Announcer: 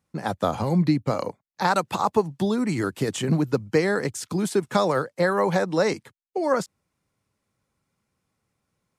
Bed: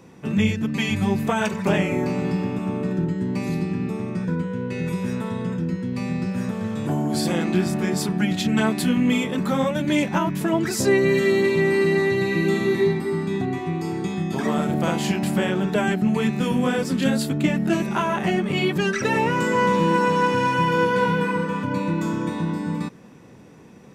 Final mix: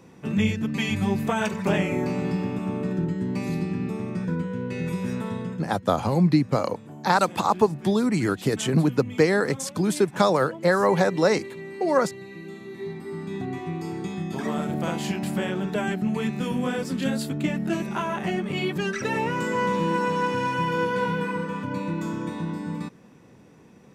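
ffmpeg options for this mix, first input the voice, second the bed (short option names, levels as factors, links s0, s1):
-filter_complex "[0:a]adelay=5450,volume=1.19[s0];[1:a]volume=3.55,afade=t=out:st=5.33:d=0.45:silence=0.158489,afade=t=in:st=12.71:d=0.88:silence=0.211349[s1];[s0][s1]amix=inputs=2:normalize=0"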